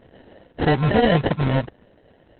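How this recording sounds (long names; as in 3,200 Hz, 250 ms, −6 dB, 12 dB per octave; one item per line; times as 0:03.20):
aliases and images of a low sample rate 1,200 Hz, jitter 0%
Opus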